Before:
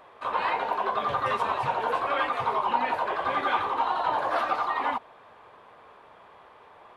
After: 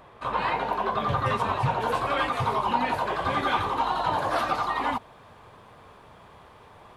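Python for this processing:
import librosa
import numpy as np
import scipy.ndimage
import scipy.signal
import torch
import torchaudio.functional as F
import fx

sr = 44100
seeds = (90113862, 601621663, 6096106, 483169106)

y = fx.bass_treble(x, sr, bass_db=15, treble_db=fx.steps((0.0, 4.0), (1.8, 11.0)))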